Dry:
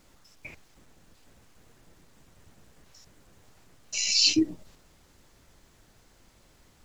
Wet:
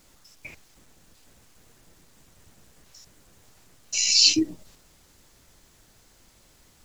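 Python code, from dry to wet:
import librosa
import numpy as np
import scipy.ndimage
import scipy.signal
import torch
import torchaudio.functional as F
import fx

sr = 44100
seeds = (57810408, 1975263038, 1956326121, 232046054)

y = fx.high_shelf(x, sr, hz=3800.0, db=7.5)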